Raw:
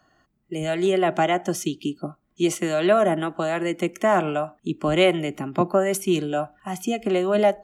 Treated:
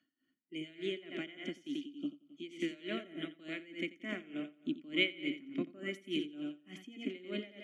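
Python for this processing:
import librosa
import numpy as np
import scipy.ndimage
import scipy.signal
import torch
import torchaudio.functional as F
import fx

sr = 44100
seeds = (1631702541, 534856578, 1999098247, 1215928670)

y = fx.vowel_filter(x, sr, vowel='i')
y = fx.low_shelf(y, sr, hz=410.0, db=-7.0)
y = fx.echo_feedback(y, sr, ms=88, feedback_pct=50, wet_db=-6.0)
y = y * 10.0 ** (-19 * (0.5 - 0.5 * np.cos(2.0 * np.pi * 3.4 * np.arange(len(y)) / sr)) / 20.0)
y = y * librosa.db_to_amplitude(4.0)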